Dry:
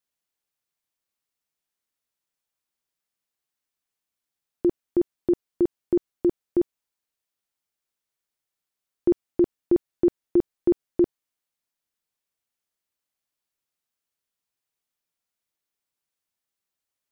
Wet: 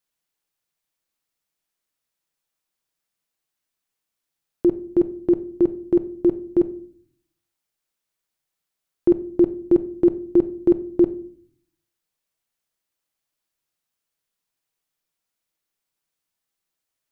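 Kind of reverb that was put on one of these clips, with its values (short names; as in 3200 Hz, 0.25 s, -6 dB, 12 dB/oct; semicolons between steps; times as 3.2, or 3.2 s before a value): shoebox room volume 560 m³, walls furnished, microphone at 0.64 m; gain +3 dB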